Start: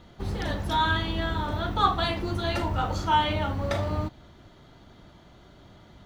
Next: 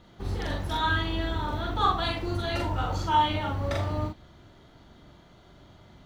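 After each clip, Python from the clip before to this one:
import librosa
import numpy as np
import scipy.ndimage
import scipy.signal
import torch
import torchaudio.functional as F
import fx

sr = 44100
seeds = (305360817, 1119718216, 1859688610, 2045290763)

y = fx.doubler(x, sr, ms=43.0, db=-2)
y = y * librosa.db_to_amplitude(-3.5)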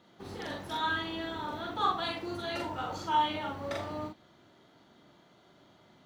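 y = scipy.signal.sosfilt(scipy.signal.butter(2, 190.0, 'highpass', fs=sr, output='sos'), x)
y = y * librosa.db_to_amplitude(-4.5)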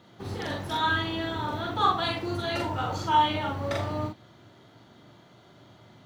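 y = fx.peak_eq(x, sr, hz=110.0, db=11.5, octaves=0.54)
y = y * librosa.db_to_amplitude(5.5)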